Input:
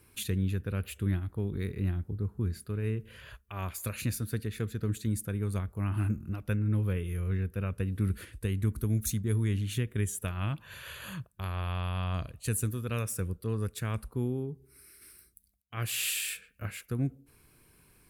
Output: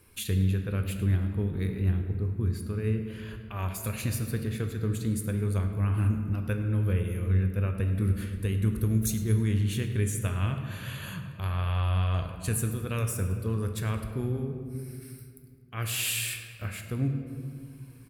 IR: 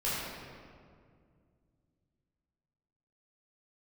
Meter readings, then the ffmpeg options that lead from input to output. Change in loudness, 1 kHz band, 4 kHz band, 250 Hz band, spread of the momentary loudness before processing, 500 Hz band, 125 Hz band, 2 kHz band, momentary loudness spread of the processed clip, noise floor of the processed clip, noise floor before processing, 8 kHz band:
+3.5 dB, +2.5 dB, +2.0 dB, +3.0 dB, 10 LU, +3.0 dB, +4.0 dB, +2.5 dB, 11 LU, -47 dBFS, -63 dBFS, +1.5 dB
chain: -filter_complex "[0:a]aecho=1:1:105|210|315|420:0.0944|0.0481|0.0246|0.0125,asplit=2[s0][s1];[1:a]atrim=start_sample=2205[s2];[s1][s2]afir=irnorm=-1:irlink=0,volume=0.266[s3];[s0][s3]amix=inputs=2:normalize=0"

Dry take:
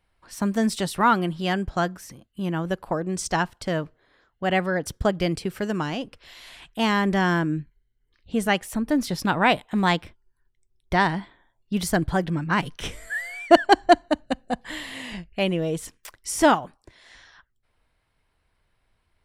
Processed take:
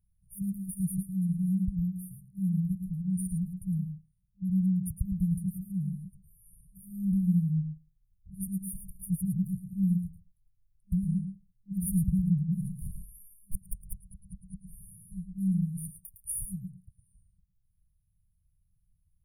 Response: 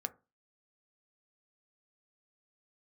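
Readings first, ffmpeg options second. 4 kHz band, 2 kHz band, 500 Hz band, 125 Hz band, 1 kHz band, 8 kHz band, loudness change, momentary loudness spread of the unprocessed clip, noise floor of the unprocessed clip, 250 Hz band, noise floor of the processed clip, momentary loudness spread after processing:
under -40 dB, under -40 dB, under -40 dB, +0.5 dB, under -40 dB, -6.0 dB, -7.5 dB, 14 LU, -72 dBFS, -4.5 dB, -73 dBFS, 19 LU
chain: -filter_complex "[0:a]asplit=2[s0][s1];[1:a]atrim=start_sample=2205,adelay=109[s2];[s1][s2]afir=irnorm=-1:irlink=0,volume=0.422[s3];[s0][s3]amix=inputs=2:normalize=0,aeval=exprs='0.422*(abs(mod(val(0)/0.422+3,4)-2)-1)':c=same,afftfilt=real='re*(1-between(b*sr/4096,200,9100))':imag='im*(1-between(b*sr/4096,200,9100))':win_size=4096:overlap=0.75"

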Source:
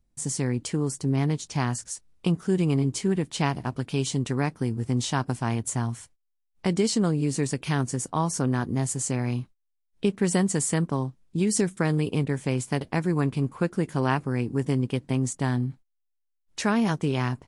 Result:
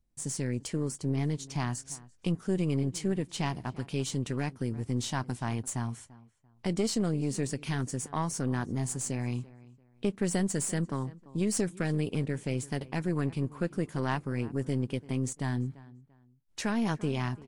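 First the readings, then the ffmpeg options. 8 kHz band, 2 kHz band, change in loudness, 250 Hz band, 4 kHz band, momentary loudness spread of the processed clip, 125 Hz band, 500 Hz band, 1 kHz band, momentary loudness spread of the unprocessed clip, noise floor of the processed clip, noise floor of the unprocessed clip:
-5.5 dB, -6.0 dB, -6.0 dB, -5.5 dB, -5.5 dB, 6 LU, -5.5 dB, -6.0 dB, -7.0 dB, 6 LU, -63 dBFS, -76 dBFS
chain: -filter_complex "[0:a]asplit=2[s0][s1];[s1]adelay=341,lowpass=f=2700:p=1,volume=0.0944,asplit=2[s2][s3];[s3]adelay=341,lowpass=f=2700:p=1,volume=0.28[s4];[s0][s2][s4]amix=inputs=3:normalize=0,aeval=exprs='(tanh(5.62*val(0)+0.45)-tanh(0.45))/5.62':c=same,volume=0.668"

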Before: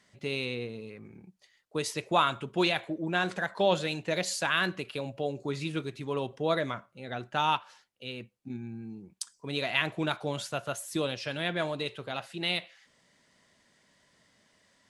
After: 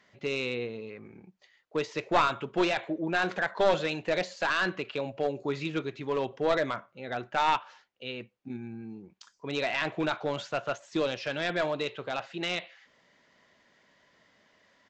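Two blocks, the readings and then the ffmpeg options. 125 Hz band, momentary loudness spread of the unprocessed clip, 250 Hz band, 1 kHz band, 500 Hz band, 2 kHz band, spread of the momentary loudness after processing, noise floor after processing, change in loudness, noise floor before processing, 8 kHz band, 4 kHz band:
-3.5 dB, 14 LU, +0.5 dB, +1.5 dB, +2.5 dB, +1.0 dB, 14 LU, -68 dBFS, +1.0 dB, -68 dBFS, -8.5 dB, -3.0 dB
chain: -af "deesser=0.85,bass=f=250:g=-7,treble=f=4000:g=-10,aresample=16000,aeval=exprs='clip(val(0),-1,0.0473)':c=same,aresample=44100,volume=1.58"

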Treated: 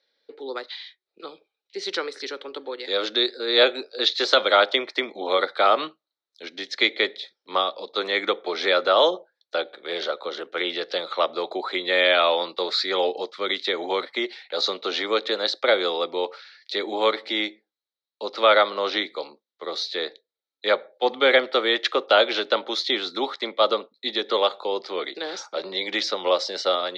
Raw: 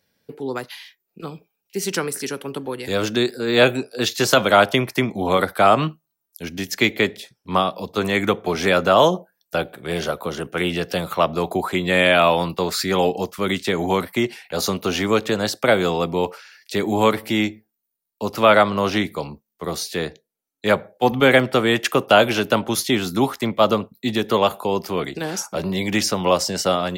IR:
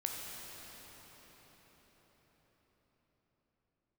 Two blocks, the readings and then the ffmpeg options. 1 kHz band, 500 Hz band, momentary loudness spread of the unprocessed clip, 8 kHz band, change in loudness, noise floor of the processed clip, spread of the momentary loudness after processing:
-4.5 dB, -3.5 dB, 14 LU, under -10 dB, -3.0 dB, under -85 dBFS, 15 LU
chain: -af "highpass=f=410:w=0.5412,highpass=f=410:w=1.3066,equalizer=f=420:t=q:w=4:g=-4,equalizer=f=700:t=q:w=4:g=-8,equalizer=f=1000:t=q:w=4:g=-8,equalizer=f=1600:t=q:w=4:g=-5,equalizer=f=2700:t=q:w=4:g=-10,equalizer=f=3900:t=q:w=4:g=9,lowpass=f=4200:w=0.5412,lowpass=f=4200:w=1.3066,volume=1.19"

